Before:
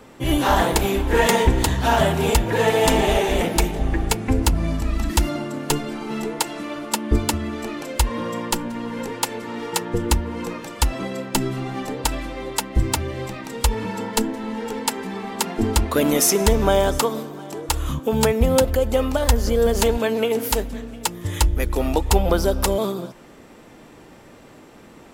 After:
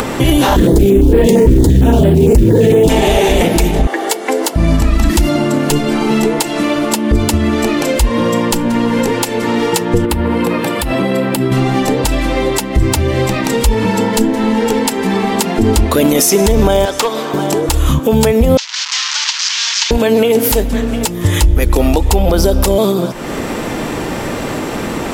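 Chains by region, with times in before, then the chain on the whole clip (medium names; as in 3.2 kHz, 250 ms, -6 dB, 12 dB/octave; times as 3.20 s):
0.56–2.89 s: resonant low shelf 550 Hz +12 dB, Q 1.5 + short-mantissa float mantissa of 4-bit + step-sequenced notch 8.8 Hz 770–6300 Hz
3.87–4.56 s: high-pass 400 Hz 24 dB/octave + band-stop 2.5 kHz, Q 6.7
10.05–11.52 s: high-pass 83 Hz + peaking EQ 6.3 kHz -12 dB 0.74 oct + compression 4:1, threshold -26 dBFS
16.85–17.34 s: band-pass filter 2.1 kHz, Q 0.5 + hard clipper -20.5 dBFS
18.57–19.91 s: one-bit delta coder 32 kbps, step -18.5 dBFS + elliptic high-pass 940 Hz, stop band 60 dB + differentiator
whole clip: upward compressor, threshold -19 dBFS; dynamic bell 1.3 kHz, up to -5 dB, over -34 dBFS, Q 1.1; loudness maximiser +13.5 dB; trim -1 dB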